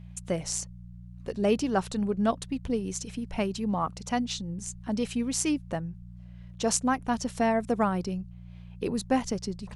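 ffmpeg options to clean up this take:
ffmpeg -i in.wav -af "bandreject=frequency=59.3:width_type=h:width=4,bandreject=frequency=118.6:width_type=h:width=4,bandreject=frequency=177.9:width_type=h:width=4" out.wav

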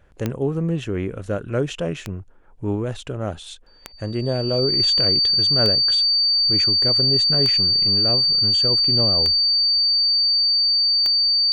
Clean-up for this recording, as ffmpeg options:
ffmpeg -i in.wav -af "adeclick=threshold=4,bandreject=frequency=4600:width=30" out.wav

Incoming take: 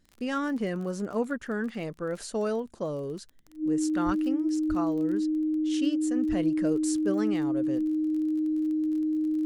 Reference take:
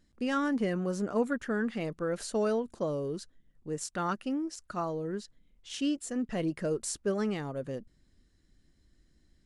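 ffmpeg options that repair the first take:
ffmpeg -i in.wav -filter_complex "[0:a]adeclick=threshold=4,bandreject=frequency=310:width=30,asplit=3[link_01][link_02][link_03];[link_01]afade=type=out:start_time=4.05:duration=0.02[link_04];[link_02]highpass=frequency=140:width=0.5412,highpass=frequency=140:width=1.3066,afade=type=in:start_time=4.05:duration=0.02,afade=type=out:start_time=4.17:duration=0.02[link_05];[link_03]afade=type=in:start_time=4.17:duration=0.02[link_06];[link_04][link_05][link_06]amix=inputs=3:normalize=0,asplit=3[link_07][link_08][link_09];[link_07]afade=type=out:start_time=4.68:duration=0.02[link_10];[link_08]highpass=frequency=140:width=0.5412,highpass=frequency=140:width=1.3066,afade=type=in:start_time=4.68:duration=0.02,afade=type=out:start_time=4.8:duration=0.02[link_11];[link_09]afade=type=in:start_time=4.8:duration=0.02[link_12];[link_10][link_11][link_12]amix=inputs=3:normalize=0,asplit=3[link_13][link_14][link_15];[link_13]afade=type=out:start_time=6.28:duration=0.02[link_16];[link_14]highpass=frequency=140:width=0.5412,highpass=frequency=140:width=1.3066,afade=type=in:start_time=6.28:duration=0.02,afade=type=out:start_time=6.4:duration=0.02[link_17];[link_15]afade=type=in:start_time=6.4:duration=0.02[link_18];[link_16][link_17][link_18]amix=inputs=3:normalize=0" out.wav

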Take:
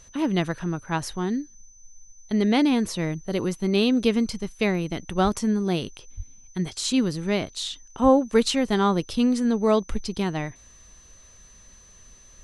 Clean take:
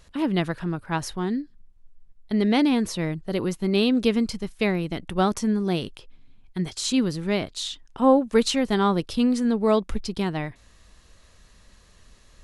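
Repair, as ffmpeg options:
ffmpeg -i in.wav -filter_complex "[0:a]bandreject=frequency=6100:width=30,asplit=3[link_01][link_02][link_03];[link_01]afade=type=out:start_time=5.23:duration=0.02[link_04];[link_02]highpass=frequency=140:width=0.5412,highpass=frequency=140:width=1.3066,afade=type=in:start_time=5.23:duration=0.02,afade=type=out:start_time=5.35:duration=0.02[link_05];[link_03]afade=type=in:start_time=5.35:duration=0.02[link_06];[link_04][link_05][link_06]amix=inputs=3:normalize=0,asplit=3[link_07][link_08][link_09];[link_07]afade=type=out:start_time=6.16:duration=0.02[link_10];[link_08]highpass=frequency=140:width=0.5412,highpass=frequency=140:width=1.3066,afade=type=in:start_time=6.16:duration=0.02,afade=type=out:start_time=6.28:duration=0.02[link_11];[link_09]afade=type=in:start_time=6.28:duration=0.02[link_12];[link_10][link_11][link_12]amix=inputs=3:normalize=0,asplit=3[link_13][link_14][link_15];[link_13]afade=type=out:start_time=8.02:duration=0.02[link_16];[link_14]highpass=frequency=140:width=0.5412,highpass=frequency=140:width=1.3066,afade=type=in:start_time=8.02:duration=0.02,afade=type=out:start_time=8.14:duration=0.02[link_17];[link_15]afade=type=in:start_time=8.14:duration=0.02[link_18];[link_16][link_17][link_18]amix=inputs=3:normalize=0" out.wav

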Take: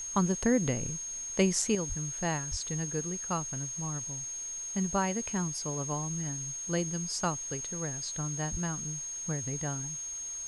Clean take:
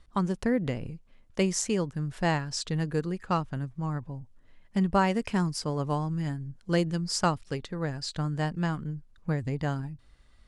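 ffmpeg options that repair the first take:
ffmpeg -i in.wav -filter_complex "[0:a]bandreject=frequency=6500:width=30,asplit=3[link_01][link_02][link_03];[link_01]afade=type=out:start_time=1.88:duration=0.02[link_04];[link_02]highpass=frequency=140:width=0.5412,highpass=frequency=140:width=1.3066,afade=type=in:start_time=1.88:duration=0.02,afade=type=out:start_time=2:duration=0.02[link_05];[link_03]afade=type=in:start_time=2:duration=0.02[link_06];[link_04][link_05][link_06]amix=inputs=3:normalize=0,asplit=3[link_07][link_08][link_09];[link_07]afade=type=out:start_time=2.5:duration=0.02[link_10];[link_08]highpass=frequency=140:width=0.5412,highpass=frequency=140:width=1.3066,afade=type=in:start_time=2.5:duration=0.02,afade=type=out:start_time=2.62:duration=0.02[link_11];[link_09]afade=type=in:start_time=2.62:duration=0.02[link_12];[link_10][link_11][link_12]amix=inputs=3:normalize=0,asplit=3[link_13][link_14][link_15];[link_13]afade=type=out:start_time=8.51:duration=0.02[link_16];[link_14]highpass=frequency=140:width=0.5412,highpass=frequency=140:width=1.3066,afade=type=in:start_time=8.51:duration=0.02,afade=type=out:start_time=8.63:duration=0.02[link_17];[link_15]afade=type=in:start_time=8.63:duration=0.02[link_18];[link_16][link_17][link_18]amix=inputs=3:normalize=0,afwtdn=0.0022,asetnsamples=nb_out_samples=441:pad=0,asendcmd='1.75 volume volume 6dB',volume=0dB" out.wav

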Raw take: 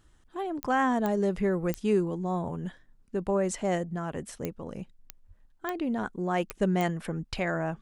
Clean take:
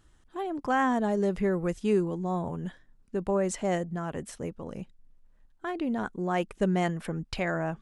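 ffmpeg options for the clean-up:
ffmpeg -i in.wav -filter_complex "[0:a]adeclick=threshold=4,asplit=3[link_01][link_02][link_03];[link_01]afade=type=out:start_time=5.27:duration=0.02[link_04];[link_02]highpass=frequency=140:width=0.5412,highpass=frequency=140:width=1.3066,afade=type=in:start_time=5.27:duration=0.02,afade=type=out:start_time=5.39:duration=0.02[link_05];[link_03]afade=type=in:start_time=5.39:duration=0.02[link_06];[link_04][link_05][link_06]amix=inputs=3:normalize=0" out.wav

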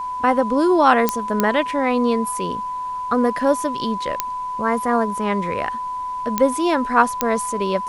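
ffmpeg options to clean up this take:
ffmpeg -i in.wav -af "adeclick=threshold=4,bandreject=frequency=1000:width=30,agate=range=-21dB:threshold=-19dB" out.wav

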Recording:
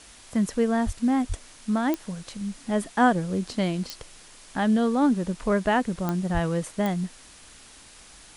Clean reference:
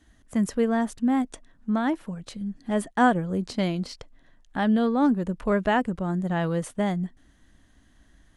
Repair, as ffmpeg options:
ffmpeg -i in.wav -filter_complex "[0:a]adeclick=threshold=4,asplit=3[link_01][link_02][link_03];[link_01]afade=type=out:start_time=0.85:duration=0.02[link_04];[link_02]highpass=frequency=140:width=0.5412,highpass=frequency=140:width=1.3066,afade=type=in:start_time=0.85:duration=0.02,afade=type=out:start_time=0.97:duration=0.02[link_05];[link_03]afade=type=in:start_time=0.97:duration=0.02[link_06];[link_04][link_05][link_06]amix=inputs=3:normalize=0,asplit=3[link_07][link_08][link_09];[link_07]afade=type=out:start_time=1.28:duration=0.02[link_10];[link_08]highpass=frequency=140:width=0.5412,highpass=frequency=140:width=1.3066,afade=type=in:start_time=1.28:duration=0.02,afade=type=out:start_time=1.4:duration=0.02[link_11];[link_09]afade=type=in:start_time=1.4:duration=0.02[link_12];[link_10][link_11][link_12]amix=inputs=3:normalize=0,asplit=3[link_13][link_14][link_15];[link_13]afade=type=out:start_time=6.33:duration=0.02[link_16];[link_14]highpass=frequency=140:width=0.5412,highpass=frequency=140:width=1.3066,afade=type=in:start_time=6.33:duration=0.02,afade=type=out:start_time=6.45:duration=0.02[link_17];[link_15]afade=type=in:start_time=6.45:duration=0.02[link_18];[link_16][link_17][link_18]amix=inputs=3:normalize=0,afwtdn=0.0045" out.wav

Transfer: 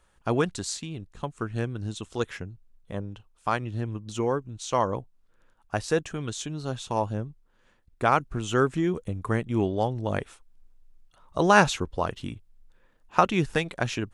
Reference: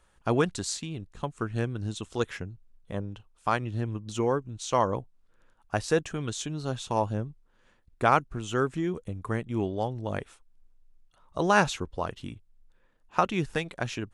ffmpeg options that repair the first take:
ffmpeg -i in.wav -af "asetnsamples=nb_out_samples=441:pad=0,asendcmd='8.2 volume volume -4dB',volume=0dB" out.wav

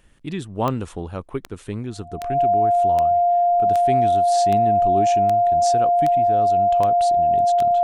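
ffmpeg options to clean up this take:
ffmpeg -i in.wav -af "adeclick=threshold=4,bandreject=frequency=700:width=30" out.wav

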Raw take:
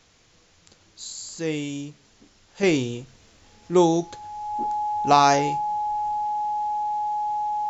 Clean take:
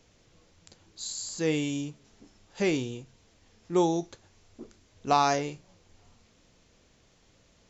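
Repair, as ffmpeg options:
ffmpeg -i in.wav -af "bandreject=frequency=840:width=30,agate=range=-21dB:threshold=-50dB,asetnsamples=nb_out_samples=441:pad=0,asendcmd='2.63 volume volume -6.5dB',volume=0dB" out.wav

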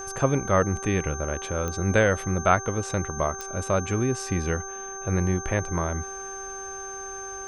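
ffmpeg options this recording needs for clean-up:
ffmpeg -i in.wav -af "adeclick=threshold=4,bandreject=frequency=389.3:width_type=h:width=4,bandreject=frequency=778.6:width_type=h:width=4,bandreject=frequency=1167.9:width_type=h:width=4,bandreject=frequency=1557.2:width_type=h:width=4,bandreject=frequency=6300:width=30" out.wav

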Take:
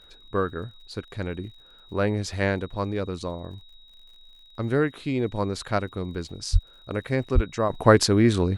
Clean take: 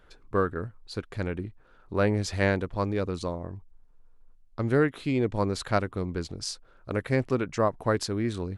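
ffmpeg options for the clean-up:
ffmpeg -i in.wav -filter_complex "[0:a]adeclick=threshold=4,bandreject=frequency=3800:width=30,asplit=3[link_01][link_02][link_03];[link_01]afade=type=out:start_time=6.52:duration=0.02[link_04];[link_02]highpass=frequency=140:width=0.5412,highpass=frequency=140:width=1.3066,afade=type=in:start_time=6.52:duration=0.02,afade=type=out:start_time=6.64:duration=0.02[link_05];[link_03]afade=type=in:start_time=6.64:duration=0.02[link_06];[link_04][link_05][link_06]amix=inputs=3:normalize=0,asplit=3[link_07][link_08][link_09];[link_07]afade=type=out:start_time=7.34:duration=0.02[link_10];[link_08]highpass=frequency=140:width=0.5412,highpass=frequency=140:width=1.3066,afade=type=in:start_time=7.34:duration=0.02,afade=type=out:start_time=7.46:duration=0.02[link_11];[link_09]afade=type=in:start_time=7.46:duration=0.02[link_12];[link_10][link_11][link_12]amix=inputs=3:normalize=0,asetnsamples=nb_out_samples=441:pad=0,asendcmd='7.7 volume volume -10dB',volume=0dB" out.wav

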